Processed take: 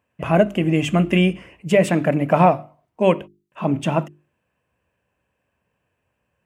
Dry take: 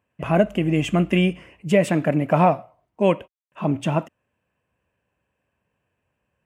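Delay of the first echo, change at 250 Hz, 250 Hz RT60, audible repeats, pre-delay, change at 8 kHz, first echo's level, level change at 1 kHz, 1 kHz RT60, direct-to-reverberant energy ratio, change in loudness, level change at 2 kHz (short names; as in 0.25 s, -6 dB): none, +1.5 dB, none, none, none, +2.5 dB, none, +2.5 dB, none, none, +2.0 dB, +2.5 dB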